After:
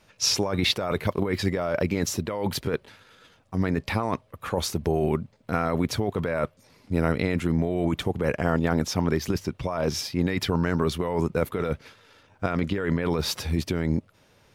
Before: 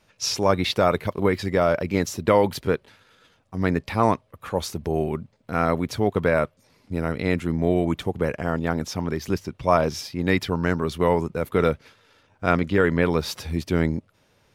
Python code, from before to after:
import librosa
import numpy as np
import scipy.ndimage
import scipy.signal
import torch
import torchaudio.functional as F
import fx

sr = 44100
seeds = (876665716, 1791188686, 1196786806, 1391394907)

y = fx.over_compress(x, sr, threshold_db=-24.0, ratio=-1.0)